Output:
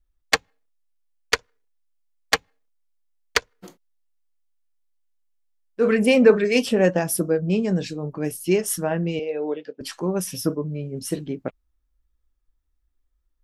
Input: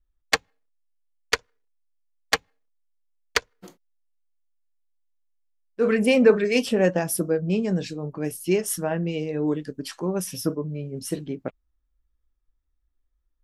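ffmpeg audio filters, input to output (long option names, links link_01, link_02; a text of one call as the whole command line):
ffmpeg -i in.wav -filter_complex "[0:a]asettb=1/sr,asplit=3[link_01][link_02][link_03];[link_01]atrim=end=9.194[link_04];[link_02]atrim=start=9.19:end=9.81,asetpts=PTS-STARTPTS,afade=type=in:duration=0.004:curve=qsin,afade=type=out:start_time=0.616:duration=0.004:curve=qsin,highpass=500,equalizer=frequency=500:width_type=q:width=4:gain=7,equalizer=frequency=710:width_type=q:width=4:gain=4,equalizer=frequency=1100:width_type=q:width=4:gain=-7,equalizer=frequency=1800:width_type=q:width=4:gain=-5,equalizer=frequency=2500:width_type=q:width=4:gain=4,equalizer=frequency=4100:width_type=q:width=4:gain=-4,lowpass=frequency=4300:width=0.5412,lowpass=frequency=4300:width=1.3066[link_05];[link_03]atrim=start=9.806[link_06];[link_04][link_05]acrossfade=duration=0.004:curve1=hsin:curve2=qsin[link_07];[link_07][link_06]acrossfade=duration=0.004:curve1=qsin:curve2=hsin,volume=2dB" out.wav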